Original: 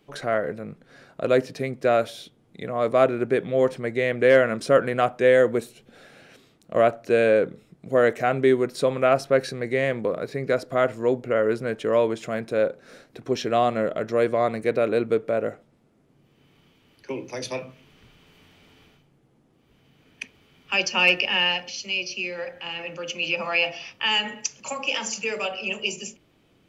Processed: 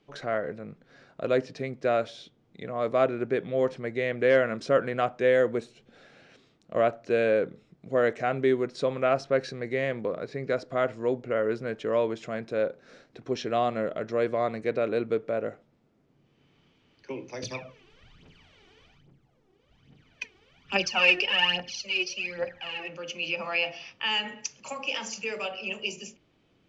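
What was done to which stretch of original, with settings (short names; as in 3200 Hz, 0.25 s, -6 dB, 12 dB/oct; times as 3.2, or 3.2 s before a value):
17.43–22.88 phaser 1.2 Hz, delay 2.8 ms, feedback 70%
whole clip: LPF 6700 Hz 24 dB/oct; gain -5 dB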